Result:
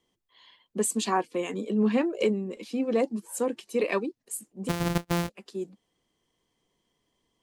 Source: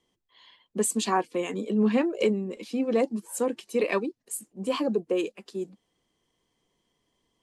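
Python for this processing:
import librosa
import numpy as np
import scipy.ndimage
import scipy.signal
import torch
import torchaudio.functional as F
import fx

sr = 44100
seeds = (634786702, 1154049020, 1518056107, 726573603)

y = fx.sample_sort(x, sr, block=256, at=(4.68, 5.28), fade=0.02)
y = y * 10.0 ** (-1.0 / 20.0)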